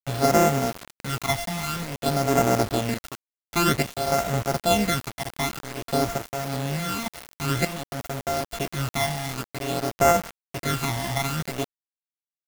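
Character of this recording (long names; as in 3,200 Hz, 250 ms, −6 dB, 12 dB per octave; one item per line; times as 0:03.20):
a buzz of ramps at a fixed pitch in blocks of 64 samples
phaser sweep stages 12, 0.52 Hz, lowest notch 430–3,900 Hz
sample-and-hold tremolo 3.4 Hz, depth 75%
a quantiser's noise floor 6 bits, dither none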